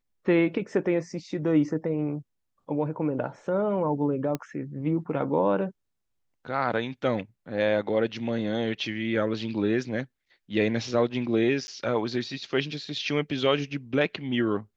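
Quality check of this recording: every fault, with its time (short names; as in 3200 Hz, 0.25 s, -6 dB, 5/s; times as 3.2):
4.35 pop -16 dBFS
11.67–11.68 gap 10 ms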